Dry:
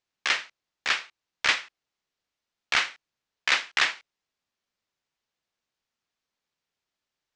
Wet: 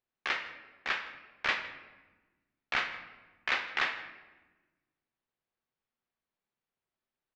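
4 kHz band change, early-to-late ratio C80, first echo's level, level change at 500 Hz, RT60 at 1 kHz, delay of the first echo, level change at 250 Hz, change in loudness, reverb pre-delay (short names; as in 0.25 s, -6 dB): -10.5 dB, 11.0 dB, -21.0 dB, -2.5 dB, 1.1 s, 0.161 s, -1.5 dB, -7.5 dB, 3 ms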